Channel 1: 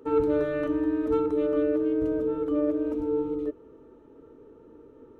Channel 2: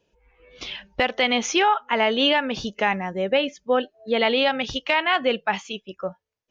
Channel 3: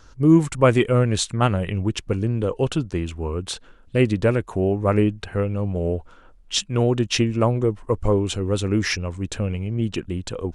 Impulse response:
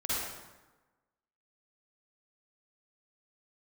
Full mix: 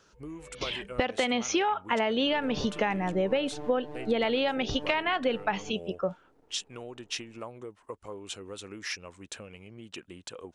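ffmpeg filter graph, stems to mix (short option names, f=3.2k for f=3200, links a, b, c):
-filter_complex "[0:a]aeval=exprs='max(val(0),0)':c=same,adelay=2200,volume=-10dB[a];[1:a]tiltshelf=f=660:g=3,volume=1.5dB[b];[2:a]acompressor=threshold=-22dB:ratio=10,highpass=f=810:p=1,volume=-7dB[c];[a][b][c]amix=inputs=3:normalize=0,acompressor=threshold=-24dB:ratio=5"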